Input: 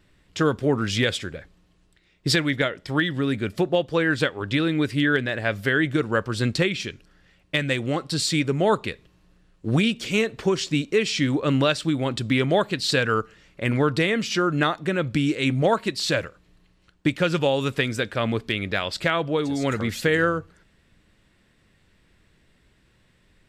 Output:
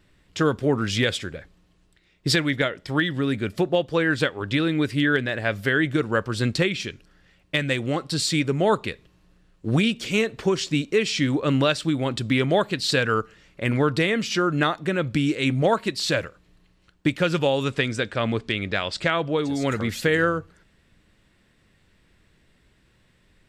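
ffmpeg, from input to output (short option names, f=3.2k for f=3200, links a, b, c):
-filter_complex "[0:a]asettb=1/sr,asplit=3[a][b][c];[a]atrim=end=17.634[d];[b]atrim=start=17.63:end=19.48,asetpts=PTS-STARTPTS,afade=t=in:d=0.004:c=qsin,afade=t=out:st=1.846:d=0.004:c=qsin,lowpass=f=9.2k:w=0.5412,lowpass=f=9.2k:w=1.3066[e];[c]atrim=start=19.476[f];[d][e]acrossfade=d=0.004:c1=hsin:c2=qsin[g];[g][f]acrossfade=d=0.004:c1=qsin:c2=hsin"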